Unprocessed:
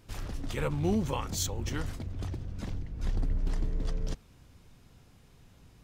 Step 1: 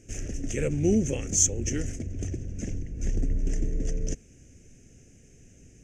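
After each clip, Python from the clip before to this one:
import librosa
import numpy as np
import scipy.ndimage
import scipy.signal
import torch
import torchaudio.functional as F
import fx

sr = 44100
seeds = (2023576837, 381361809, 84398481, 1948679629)

y = fx.curve_eq(x, sr, hz=(170.0, 250.0, 420.0, 670.0, 1000.0, 1700.0, 2700.0, 4100.0, 6300.0, 13000.0), db=(0, 4, 4, -4, -27, -2, 0, -19, 14, -14))
y = F.gain(torch.from_numpy(y), 3.0).numpy()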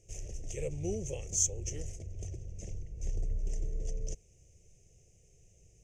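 y = fx.fixed_phaser(x, sr, hz=620.0, stages=4)
y = F.gain(torch.from_numpy(y), -6.5).numpy()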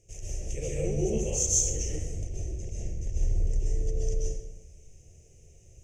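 y = fx.rev_plate(x, sr, seeds[0], rt60_s=1.0, hf_ratio=0.65, predelay_ms=115, drr_db=-6.0)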